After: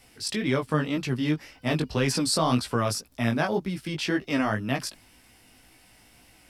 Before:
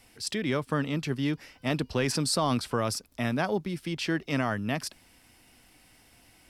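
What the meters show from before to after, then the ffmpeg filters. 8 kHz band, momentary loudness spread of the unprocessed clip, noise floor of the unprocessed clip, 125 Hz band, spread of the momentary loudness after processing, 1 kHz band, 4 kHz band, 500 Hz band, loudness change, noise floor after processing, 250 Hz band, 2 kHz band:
+2.5 dB, 6 LU, −60 dBFS, +3.0 dB, 6 LU, +2.5 dB, +2.5 dB, +2.5 dB, +3.0 dB, −57 dBFS, +3.0 dB, +2.5 dB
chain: -af "flanger=delay=15:depth=4.7:speed=1.9,volume=5.5dB"

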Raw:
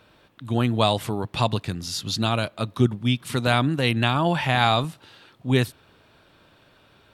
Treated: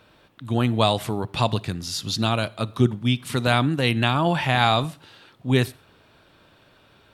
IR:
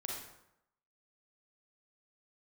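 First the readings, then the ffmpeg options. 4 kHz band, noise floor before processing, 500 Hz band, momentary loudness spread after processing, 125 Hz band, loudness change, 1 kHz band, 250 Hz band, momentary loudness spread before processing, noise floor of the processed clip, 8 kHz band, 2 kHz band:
+0.5 dB, −58 dBFS, +0.5 dB, 8 LU, +0.5 dB, +0.5 dB, +0.5 dB, +0.5 dB, 8 LU, −57 dBFS, +0.5 dB, +0.5 dB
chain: -filter_complex "[0:a]asplit=2[link_01][link_02];[1:a]atrim=start_sample=2205,atrim=end_sample=6615[link_03];[link_02][link_03]afir=irnorm=-1:irlink=0,volume=-18.5dB[link_04];[link_01][link_04]amix=inputs=2:normalize=0"

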